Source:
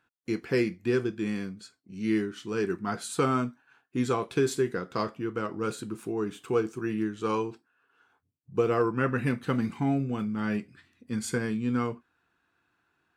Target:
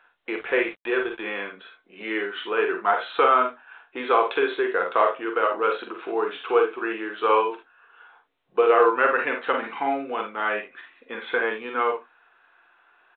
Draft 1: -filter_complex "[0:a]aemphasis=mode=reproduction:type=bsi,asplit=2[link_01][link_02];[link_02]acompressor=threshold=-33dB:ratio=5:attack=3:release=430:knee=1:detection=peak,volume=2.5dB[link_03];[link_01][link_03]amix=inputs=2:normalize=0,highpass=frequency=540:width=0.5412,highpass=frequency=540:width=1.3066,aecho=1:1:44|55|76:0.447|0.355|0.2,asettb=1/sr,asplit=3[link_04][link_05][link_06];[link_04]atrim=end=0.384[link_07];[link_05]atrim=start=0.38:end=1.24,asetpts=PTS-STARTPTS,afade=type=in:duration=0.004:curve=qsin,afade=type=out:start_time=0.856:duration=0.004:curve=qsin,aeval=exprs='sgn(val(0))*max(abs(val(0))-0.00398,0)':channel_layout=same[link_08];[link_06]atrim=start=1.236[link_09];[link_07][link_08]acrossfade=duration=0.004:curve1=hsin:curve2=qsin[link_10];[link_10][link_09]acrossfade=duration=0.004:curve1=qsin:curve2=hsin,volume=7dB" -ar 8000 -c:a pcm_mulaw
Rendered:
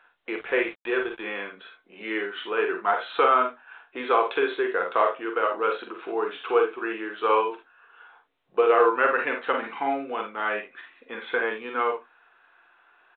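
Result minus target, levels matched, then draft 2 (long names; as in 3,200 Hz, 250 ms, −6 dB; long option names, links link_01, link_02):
downward compressor: peak gain reduction +5.5 dB
-filter_complex "[0:a]aemphasis=mode=reproduction:type=bsi,asplit=2[link_01][link_02];[link_02]acompressor=threshold=-26dB:ratio=5:attack=3:release=430:knee=1:detection=peak,volume=2.5dB[link_03];[link_01][link_03]amix=inputs=2:normalize=0,highpass=frequency=540:width=0.5412,highpass=frequency=540:width=1.3066,aecho=1:1:44|55|76:0.447|0.355|0.2,asettb=1/sr,asplit=3[link_04][link_05][link_06];[link_04]atrim=end=0.384[link_07];[link_05]atrim=start=0.38:end=1.24,asetpts=PTS-STARTPTS,afade=type=in:duration=0.004:curve=qsin,afade=type=out:start_time=0.856:duration=0.004:curve=qsin,aeval=exprs='sgn(val(0))*max(abs(val(0))-0.00398,0)':channel_layout=same[link_08];[link_06]atrim=start=1.236[link_09];[link_07][link_08]acrossfade=duration=0.004:curve1=hsin:curve2=qsin[link_10];[link_10][link_09]acrossfade=duration=0.004:curve1=qsin:curve2=hsin,volume=7dB" -ar 8000 -c:a pcm_mulaw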